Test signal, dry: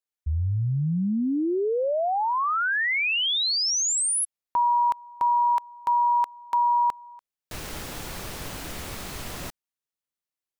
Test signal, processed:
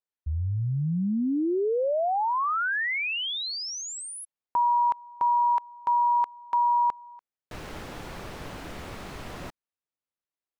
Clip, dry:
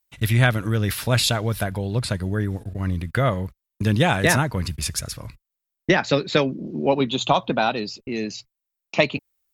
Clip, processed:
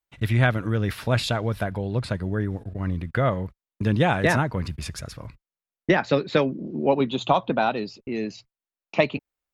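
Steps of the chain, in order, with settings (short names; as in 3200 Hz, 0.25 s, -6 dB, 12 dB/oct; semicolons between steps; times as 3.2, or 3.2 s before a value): LPF 1800 Hz 6 dB/oct; low shelf 150 Hz -4 dB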